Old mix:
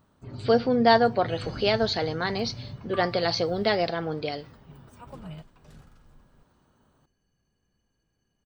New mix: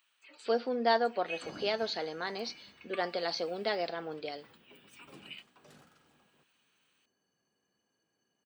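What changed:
speech -8.0 dB; first sound: add resonant high-pass 2500 Hz, resonance Q 4.2; master: add HPF 280 Hz 12 dB/oct

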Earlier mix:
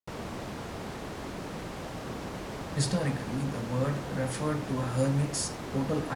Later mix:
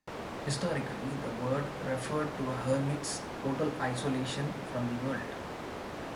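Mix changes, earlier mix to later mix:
speech: entry -2.30 s; master: add tone controls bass -7 dB, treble -6 dB

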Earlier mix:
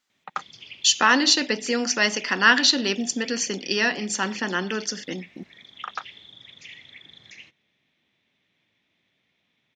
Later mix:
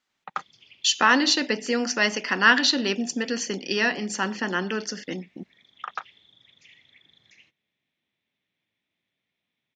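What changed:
speech: add high shelf 6100 Hz -9.5 dB; background -10.5 dB

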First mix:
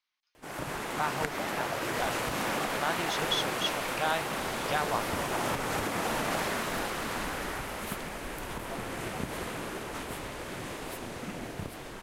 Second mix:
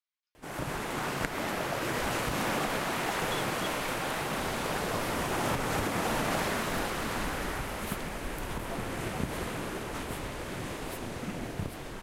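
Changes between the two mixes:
speech -12.0 dB; background: add low shelf 210 Hz +5.5 dB

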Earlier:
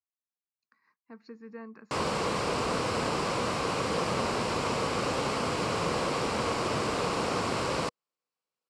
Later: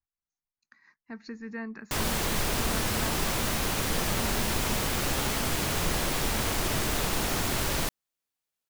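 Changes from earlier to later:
speech +7.5 dB; master: remove speaker cabinet 120–7200 Hz, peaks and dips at 490 Hz +8 dB, 1100 Hz +7 dB, 1800 Hz -6 dB, 3500 Hz -7 dB, 6300 Hz -9 dB

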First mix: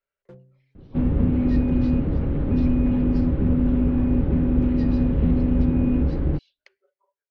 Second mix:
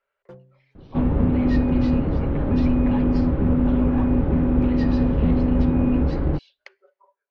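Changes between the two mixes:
speech +6.5 dB; master: add bell 950 Hz +7.5 dB 1.9 oct

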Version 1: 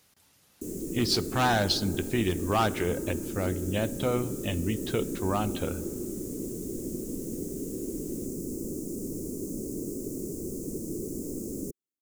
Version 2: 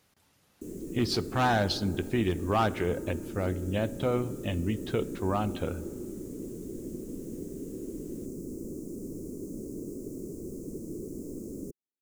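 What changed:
background -3.5 dB; master: add high shelf 3200 Hz -8 dB

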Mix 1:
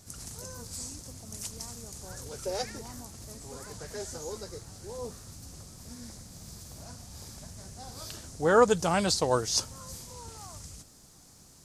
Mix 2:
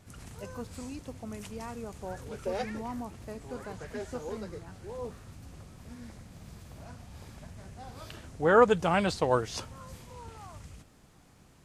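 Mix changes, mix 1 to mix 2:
speech +10.0 dB; master: add resonant high shelf 3800 Hz -11 dB, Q 1.5

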